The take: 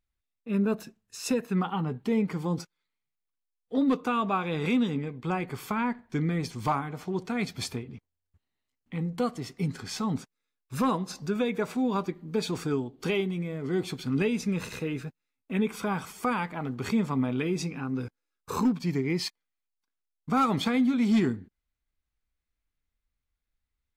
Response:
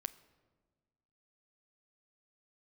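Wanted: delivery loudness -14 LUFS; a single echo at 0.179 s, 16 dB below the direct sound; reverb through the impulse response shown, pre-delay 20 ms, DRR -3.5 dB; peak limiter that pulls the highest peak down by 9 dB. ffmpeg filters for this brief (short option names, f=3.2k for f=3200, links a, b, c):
-filter_complex "[0:a]alimiter=level_in=1.5dB:limit=-24dB:level=0:latency=1,volume=-1.5dB,aecho=1:1:179:0.158,asplit=2[a][b];[1:a]atrim=start_sample=2205,adelay=20[c];[b][c]afir=irnorm=-1:irlink=0,volume=5.5dB[d];[a][d]amix=inputs=2:normalize=0,volume=15.5dB"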